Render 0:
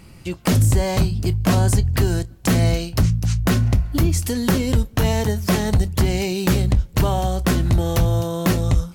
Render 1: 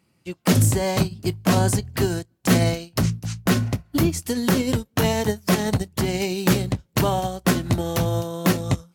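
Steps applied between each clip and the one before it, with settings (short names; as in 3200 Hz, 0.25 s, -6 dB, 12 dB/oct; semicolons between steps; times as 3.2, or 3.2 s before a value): HPF 140 Hz 12 dB/oct; maximiser +10 dB; upward expander 2.5:1, over -24 dBFS; gain -4.5 dB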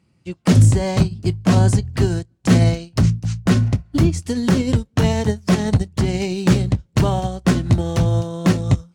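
polynomial smoothing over 9 samples; low shelf 190 Hz +11 dB; gain -1 dB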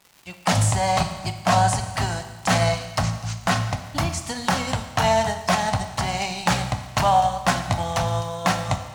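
resonant low shelf 540 Hz -11.5 dB, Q 3; crackle 280/s -40 dBFS; Schroeder reverb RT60 1.3 s, combs from 28 ms, DRR 8 dB; gain +2 dB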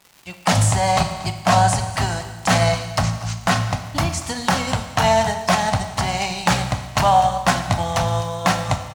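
echo 0.235 s -18.5 dB; gain +3 dB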